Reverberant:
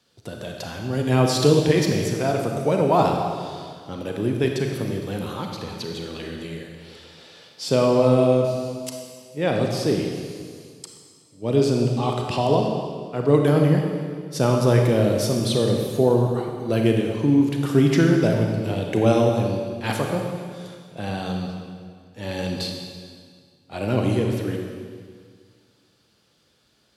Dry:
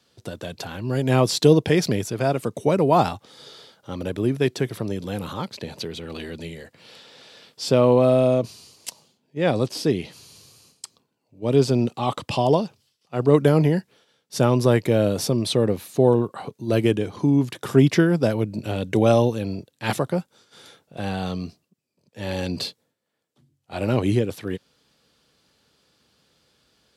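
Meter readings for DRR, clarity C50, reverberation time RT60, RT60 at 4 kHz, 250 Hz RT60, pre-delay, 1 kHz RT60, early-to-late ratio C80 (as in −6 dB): 1.5 dB, 2.5 dB, 1.9 s, 1.8 s, 2.0 s, 30 ms, 1.9 s, 4.0 dB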